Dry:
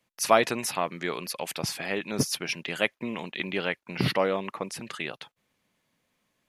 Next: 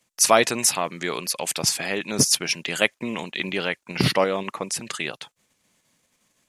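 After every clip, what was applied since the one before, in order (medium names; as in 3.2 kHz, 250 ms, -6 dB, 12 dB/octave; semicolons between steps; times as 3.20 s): peaking EQ 7.6 kHz +11.5 dB 1.2 oct; in parallel at -1 dB: level held to a coarse grid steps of 12 dB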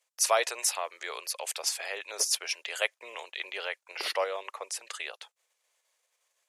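steep high-pass 470 Hz 36 dB/octave; trim -8 dB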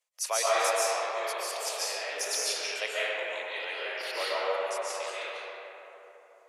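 reverberation RT60 3.6 s, pre-delay 100 ms, DRR -9.5 dB; trim -7 dB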